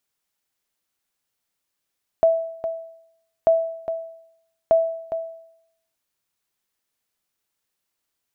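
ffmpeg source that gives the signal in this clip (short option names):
-f lavfi -i "aevalsrc='0.335*(sin(2*PI*657*mod(t,1.24))*exp(-6.91*mod(t,1.24)/0.74)+0.316*sin(2*PI*657*max(mod(t,1.24)-0.41,0))*exp(-6.91*max(mod(t,1.24)-0.41,0)/0.74))':d=3.72:s=44100"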